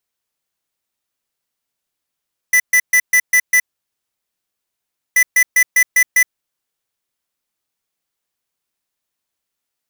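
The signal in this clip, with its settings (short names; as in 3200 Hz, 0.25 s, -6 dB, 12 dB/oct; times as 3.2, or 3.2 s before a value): beep pattern square 1990 Hz, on 0.07 s, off 0.13 s, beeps 6, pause 1.56 s, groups 2, -11 dBFS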